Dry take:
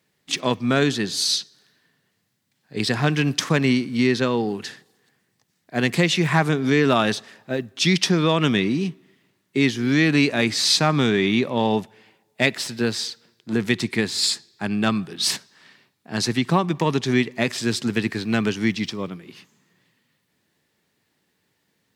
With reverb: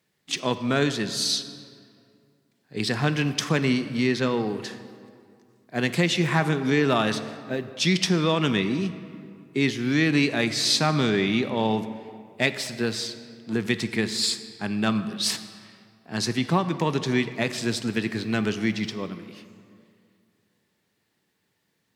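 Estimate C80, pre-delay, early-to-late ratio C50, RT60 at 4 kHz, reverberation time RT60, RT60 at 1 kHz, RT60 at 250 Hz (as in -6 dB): 12.5 dB, 3 ms, 12.0 dB, 1.4 s, 2.3 s, 2.3 s, 2.4 s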